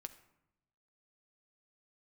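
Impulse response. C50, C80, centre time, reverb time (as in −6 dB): 13.5 dB, 15.5 dB, 6 ms, 0.85 s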